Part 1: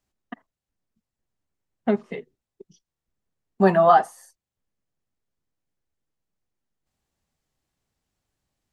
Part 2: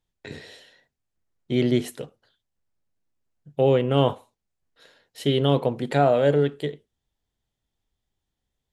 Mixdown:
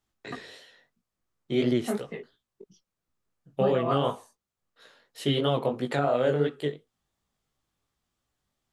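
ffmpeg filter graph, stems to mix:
-filter_complex "[0:a]acrossover=split=480|3000[s0][s1][s2];[s1]acompressor=threshold=0.1:ratio=6[s3];[s0][s3][s2]amix=inputs=3:normalize=0,volume=1.06[s4];[1:a]highpass=f=160:p=1,volume=1.19,asplit=2[s5][s6];[s6]apad=whole_len=384913[s7];[s4][s7]sidechaincompress=threshold=0.1:ratio=8:attack=12:release=1100[s8];[s8][s5]amix=inputs=2:normalize=0,equalizer=f=1200:w=5:g=7.5,flanger=delay=15.5:depth=6.2:speed=2.9,alimiter=limit=0.188:level=0:latency=1:release=184"

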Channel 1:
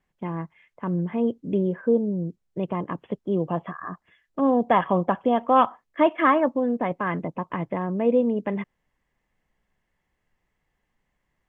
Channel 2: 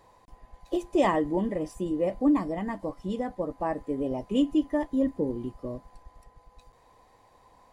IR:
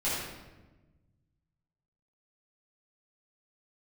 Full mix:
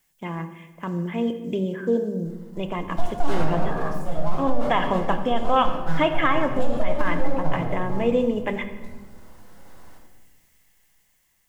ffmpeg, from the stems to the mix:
-filter_complex "[0:a]highshelf=f=2800:g=9,bandreject=f=50:t=h:w=6,bandreject=f=100:t=h:w=6,bandreject=f=150:t=h:w=6,bandreject=f=200:t=h:w=6,crystalizer=i=4.5:c=0,volume=0.708,asplit=2[s0][s1];[s1]volume=0.158[s2];[1:a]aeval=exprs='abs(val(0))':c=same,equalizer=f=2300:t=o:w=1.4:g=-8.5,adelay=2250,volume=0.841,asplit=2[s3][s4];[s4]volume=0.708[s5];[2:a]atrim=start_sample=2205[s6];[s2][s5]amix=inputs=2:normalize=0[s7];[s7][s6]afir=irnorm=-1:irlink=0[s8];[s0][s3][s8]amix=inputs=3:normalize=0,dynaudnorm=f=540:g=7:m=3.76,alimiter=limit=0.335:level=0:latency=1:release=61"

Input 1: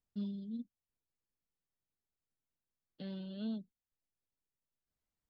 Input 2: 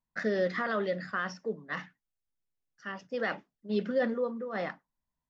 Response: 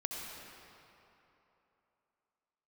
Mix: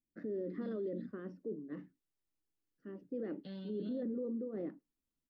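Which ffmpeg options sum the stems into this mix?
-filter_complex "[0:a]adelay=450,volume=0.75[s0];[1:a]firequalizer=gain_entry='entry(180,0);entry(300,15);entry(740,-17);entry(5900,-29)':delay=0.05:min_phase=1,alimiter=limit=0.0631:level=0:latency=1:release=16,volume=0.501,asplit=2[s1][s2];[s2]apad=whole_len=253259[s3];[s0][s3]sidechaincompress=threshold=0.0112:ratio=8:attack=16:release=350[s4];[s4][s1]amix=inputs=2:normalize=0,alimiter=level_in=2.66:limit=0.0631:level=0:latency=1:release=10,volume=0.376"

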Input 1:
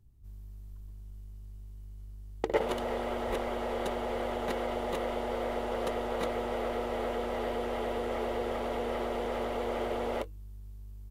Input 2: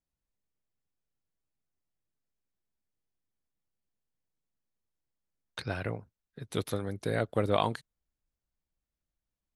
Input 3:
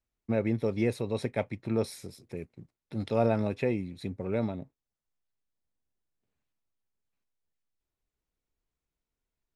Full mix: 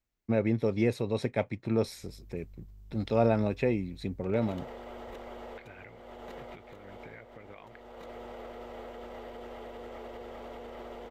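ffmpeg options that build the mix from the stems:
-filter_complex "[0:a]alimiter=level_in=1.26:limit=0.0631:level=0:latency=1:release=26,volume=0.794,adelay=1800,volume=0.562[s0];[1:a]highpass=50,acompressor=threshold=0.0158:ratio=3,lowpass=f=2200:t=q:w=5.7,volume=0.335,asplit=2[s1][s2];[2:a]volume=1.12[s3];[s2]apad=whole_len=569028[s4];[s0][s4]sidechaincompress=threshold=0.00316:ratio=8:attack=41:release=1010[s5];[s5][s1]amix=inputs=2:normalize=0,alimiter=level_in=3.76:limit=0.0631:level=0:latency=1:release=285,volume=0.266,volume=1[s6];[s3][s6]amix=inputs=2:normalize=0,equalizer=f=10000:w=5:g=-13.5"

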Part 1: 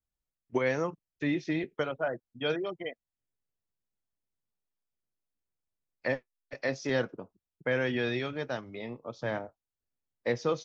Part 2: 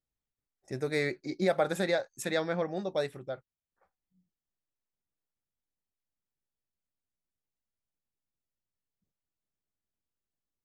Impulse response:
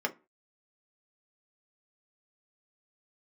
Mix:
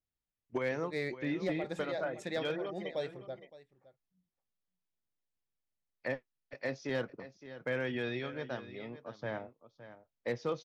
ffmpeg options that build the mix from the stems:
-filter_complex "[0:a]volume=0.531,asplit=3[s0][s1][s2];[s1]volume=0.2[s3];[1:a]equalizer=f=1300:w=4:g=-6.5,bandreject=f=1500:w=12,volume=0.531,asplit=2[s4][s5];[s5]volume=0.112[s6];[s2]apad=whole_len=469322[s7];[s4][s7]sidechaincompress=threshold=0.00708:ratio=10:attack=41:release=134[s8];[s3][s6]amix=inputs=2:normalize=0,aecho=0:1:565:1[s9];[s0][s8][s9]amix=inputs=3:normalize=0,lowpass=5100,volume=18.8,asoftclip=hard,volume=0.0531"

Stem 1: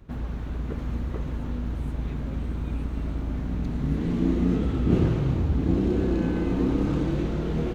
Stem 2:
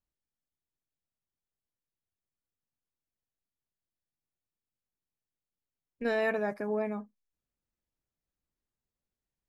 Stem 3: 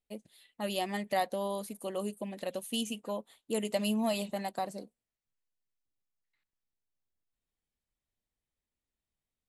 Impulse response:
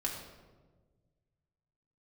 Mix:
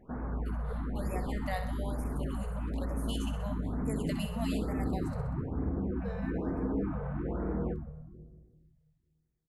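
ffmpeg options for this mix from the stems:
-filter_complex "[0:a]lowpass=f=1500:w=0.5412,lowpass=f=1500:w=1.3066,acompressor=threshold=0.0562:ratio=8,aeval=exprs='val(0)+0.00178*(sin(2*PI*50*n/s)+sin(2*PI*2*50*n/s)/2+sin(2*PI*3*50*n/s)/3+sin(2*PI*4*50*n/s)/4+sin(2*PI*5*50*n/s)/5)':c=same,volume=1.26,asplit=2[s0][s1];[s1]volume=0.224[s2];[1:a]acrossover=split=480[s3][s4];[s4]acompressor=threshold=0.00708:ratio=2.5[s5];[s3][s5]amix=inputs=2:normalize=0,volume=0.316,asplit=2[s6][s7];[s7]volume=0.501[s8];[2:a]equalizer=f=1800:t=o:w=0.77:g=6,adelay=350,volume=0.398,asplit=2[s9][s10];[s10]volume=0.355[s11];[s0][s6]amix=inputs=2:normalize=0,highpass=f=520:p=1,alimiter=level_in=2.37:limit=0.0631:level=0:latency=1:release=28,volume=0.422,volume=1[s12];[3:a]atrim=start_sample=2205[s13];[s2][s8]amix=inputs=2:normalize=0[s14];[s14][s13]afir=irnorm=-1:irlink=0[s15];[s11]aecho=0:1:64|128|192|256|320|384|448|512:1|0.53|0.281|0.149|0.0789|0.0418|0.0222|0.0117[s16];[s9][s12][s15][s16]amix=inputs=4:normalize=0,afftfilt=real='re*(1-between(b*sr/1024,280*pow(3700/280,0.5+0.5*sin(2*PI*1.1*pts/sr))/1.41,280*pow(3700/280,0.5+0.5*sin(2*PI*1.1*pts/sr))*1.41))':imag='im*(1-between(b*sr/1024,280*pow(3700/280,0.5+0.5*sin(2*PI*1.1*pts/sr))/1.41,280*pow(3700/280,0.5+0.5*sin(2*PI*1.1*pts/sr))*1.41))':win_size=1024:overlap=0.75"

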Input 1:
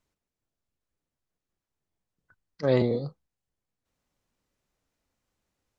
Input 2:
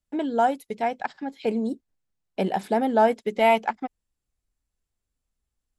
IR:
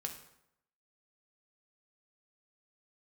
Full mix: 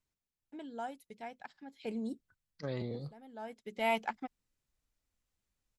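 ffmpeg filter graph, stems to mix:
-filter_complex "[0:a]acompressor=threshold=0.0708:ratio=5,volume=0.501,asplit=2[s0][s1];[1:a]adelay=400,volume=0.531,afade=t=in:st=1.62:d=0.58:silence=0.375837[s2];[s1]apad=whole_len=272726[s3];[s2][s3]sidechaincompress=threshold=0.001:ratio=8:attack=8.4:release=508[s4];[s0][s4]amix=inputs=2:normalize=0,equalizer=f=550:t=o:w=2.8:g=-6.5"

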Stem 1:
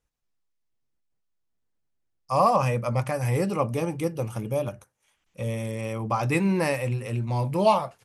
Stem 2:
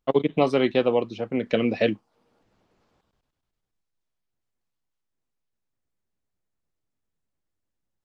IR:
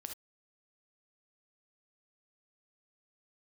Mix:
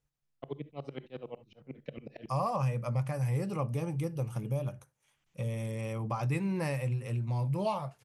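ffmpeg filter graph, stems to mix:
-filter_complex "[0:a]volume=0.562,asplit=2[s0][s1];[s1]volume=0.133[s2];[1:a]aeval=exprs='val(0)*pow(10,-35*if(lt(mod(-11*n/s,1),2*abs(-11)/1000),1-mod(-11*n/s,1)/(2*abs(-11)/1000),(mod(-11*n/s,1)-2*abs(-11)/1000)/(1-2*abs(-11)/1000))/20)':c=same,adelay=350,volume=0.141,asplit=2[s3][s4];[s4]volume=0.668[s5];[2:a]atrim=start_sample=2205[s6];[s2][s5]amix=inputs=2:normalize=0[s7];[s7][s6]afir=irnorm=-1:irlink=0[s8];[s0][s3][s8]amix=inputs=3:normalize=0,equalizer=f=140:w=3.8:g=13.5,acompressor=threshold=0.02:ratio=2"

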